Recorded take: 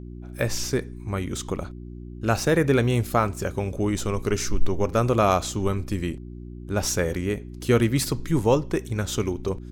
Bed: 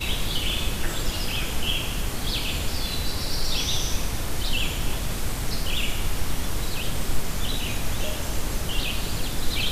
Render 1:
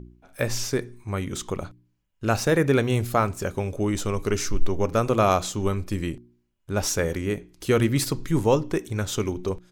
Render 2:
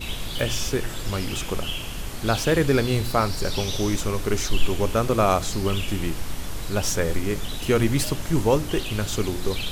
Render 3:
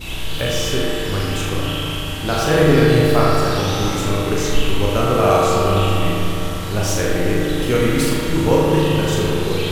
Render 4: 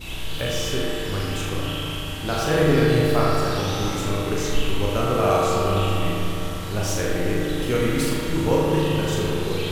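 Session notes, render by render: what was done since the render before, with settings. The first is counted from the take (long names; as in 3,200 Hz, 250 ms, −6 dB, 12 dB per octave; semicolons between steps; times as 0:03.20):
hum removal 60 Hz, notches 6
mix in bed −4.5 dB
flutter between parallel walls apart 6.8 metres, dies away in 0.7 s; spring reverb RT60 3.5 s, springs 33/51 ms, chirp 20 ms, DRR −3 dB
level −5 dB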